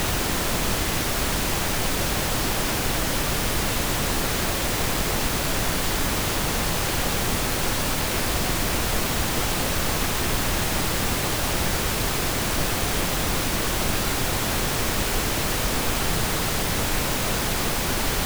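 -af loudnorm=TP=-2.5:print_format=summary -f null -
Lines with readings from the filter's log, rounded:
Input Integrated:    -23.5 LUFS
Input True Peak:     -10.3 dBTP
Input LRA:             0.1 LU
Input Threshold:     -33.5 LUFS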